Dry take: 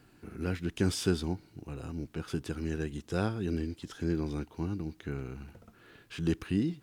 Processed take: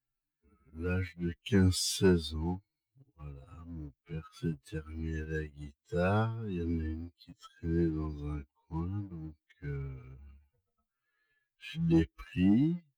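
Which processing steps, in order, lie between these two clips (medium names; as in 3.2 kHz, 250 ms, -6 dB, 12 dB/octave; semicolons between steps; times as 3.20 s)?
expander on every frequency bin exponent 2; time stretch by phase-locked vocoder 1.9×; waveshaping leveller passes 1; trim +2 dB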